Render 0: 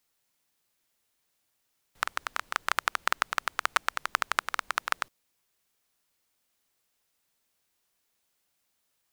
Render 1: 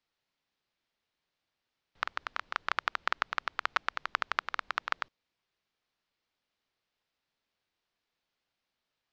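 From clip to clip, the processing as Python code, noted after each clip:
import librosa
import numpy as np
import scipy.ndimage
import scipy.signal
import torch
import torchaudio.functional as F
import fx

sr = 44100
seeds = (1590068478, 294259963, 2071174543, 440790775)

y = scipy.signal.sosfilt(scipy.signal.butter(4, 4800.0, 'lowpass', fs=sr, output='sos'), x)
y = F.gain(torch.from_numpy(y), -3.5).numpy()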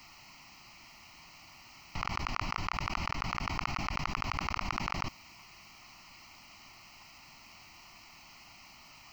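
y = fx.fixed_phaser(x, sr, hz=2400.0, stages=8)
y = fx.env_flatten(y, sr, amount_pct=100)
y = F.gain(torch.from_numpy(y), -5.5).numpy()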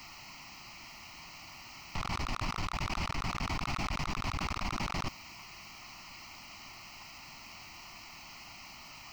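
y = 10.0 ** (-33.0 / 20.0) * np.tanh(x / 10.0 ** (-33.0 / 20.0))
y = F.gain(torch.from_numpy(y), 5.0).numpy()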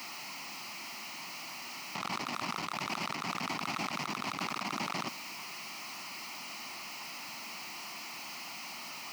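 y = x + 0.5 * 10.0 ** (-42.5 / 20.0) * np.sign(x)
y = scipy.signal.sosfilt(scipy.signal.butter(4, 180.0, 'highpass', fs=sr, output='sos'), y)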